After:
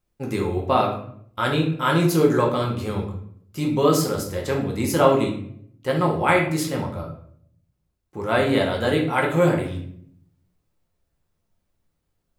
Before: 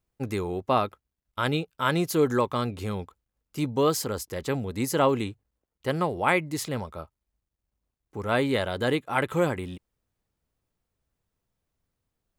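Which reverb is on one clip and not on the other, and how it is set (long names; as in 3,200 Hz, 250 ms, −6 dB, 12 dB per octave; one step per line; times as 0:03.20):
rectangular room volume 110 cubic metres, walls mixed, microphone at 0.9 metres
level +1 dB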